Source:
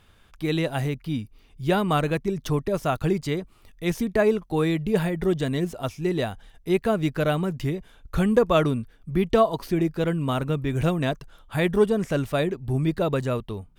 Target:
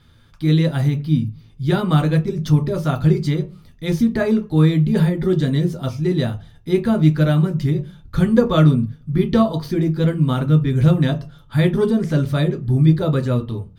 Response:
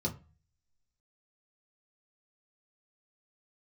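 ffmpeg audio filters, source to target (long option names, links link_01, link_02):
-filter_complex "[0:a]asplit=2[link_01][link_02];[1:a]atrim=start_sample=2205,highshelf=frequency=2300:gain=9[link_03];[link_02][link_03]afir=irnorm=-1:irlink=0,volume=-5dB[link_04];[link_01][link_04]amix=inputs=2:normalize=0,volume=-1dB"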